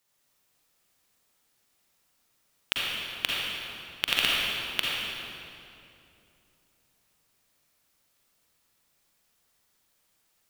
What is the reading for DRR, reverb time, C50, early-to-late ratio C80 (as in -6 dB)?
-5.0 dB, 2.7 s, -4.0 dB, -2.0 dB